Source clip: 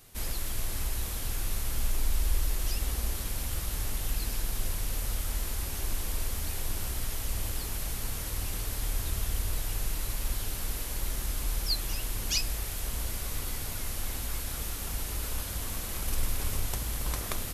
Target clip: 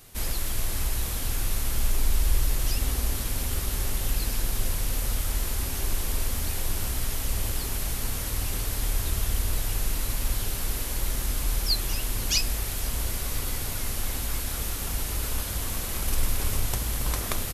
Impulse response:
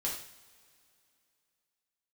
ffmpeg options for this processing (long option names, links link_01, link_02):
-filter_complex "[0:a]asplit=5[link_01][link_02][link_03][link_04][link_05];[link_02]adelay=494,afreqshift=-140,volume=-23.5dB[link_06];[link_03]adelay=988,afreqshift=-280,volume=-27.7dB[link_07];[link_04]adelay=1482,afreqshift=-420,volume=-31.8dB[link_08];[link_05]adelay=1976,afreqshift=-560,volume=-36dB[link_09];[link_01][link_06][link_07][link_08][link_09]amix=inputs=5:normalize=0,volume=4.5dB"